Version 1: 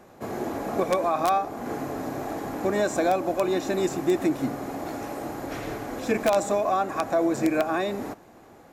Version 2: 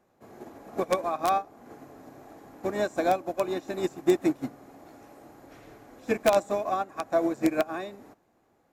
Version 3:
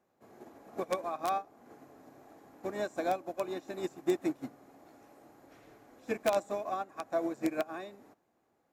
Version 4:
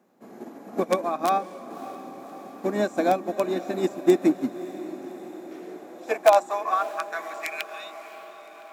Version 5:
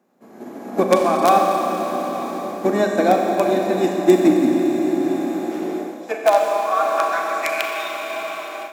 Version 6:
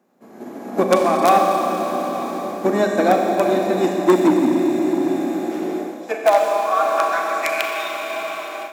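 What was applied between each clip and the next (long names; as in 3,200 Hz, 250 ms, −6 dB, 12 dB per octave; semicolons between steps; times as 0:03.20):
expander for the loud parts 2.5 to 1, over −31 dBFS; level +2.5 dB
low-shelf EQ 84 Hz −8.5 dB; level −7 dB
high-pass filter sweep 210 Hz → 2,800 Hz, 0:04.90–0:07.77; feedback delay with all-pass diffusion 583 ms, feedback 62%, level −15 dB; level +8.5 dB
four-comb reverb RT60 3.6 s, combs from 29 ms, DRR 1 dB; automatic gain control gain up to 11.5 dB; level −1 dB
saturating transformer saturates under 660 Hz; level +1 dB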